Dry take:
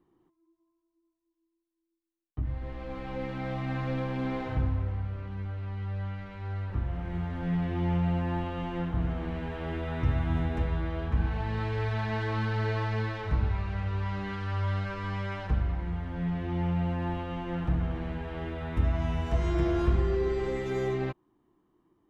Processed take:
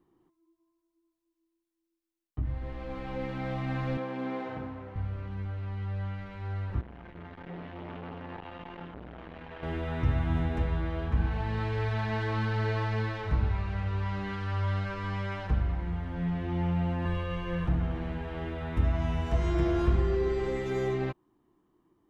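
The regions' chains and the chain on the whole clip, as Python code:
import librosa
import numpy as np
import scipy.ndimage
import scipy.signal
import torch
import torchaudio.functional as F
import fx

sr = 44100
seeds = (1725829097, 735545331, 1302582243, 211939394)

y = fx.chain(x, sr, fx.highpass(hz=240.0, slope=12),
    fx.high_shelf(hz=3000.0, db=-7.5), at=(3.97, 4.96))
y = fx.chain(y, sr, fx.lowpass(hz=4100.0, slope=12),
    fx.low_shelf(hz=450.0, db=-10.5),
    fx.transformer_sat(knee_hz=760.0), at=(6.81, 9.63))
y = fx.chain(y, sr, fx.peak_eq(hz=680.0, db=-10.0, octaves=0.25),
    fx.comb(ms=1.8, depth=0.94), at=(17.05, 17.67))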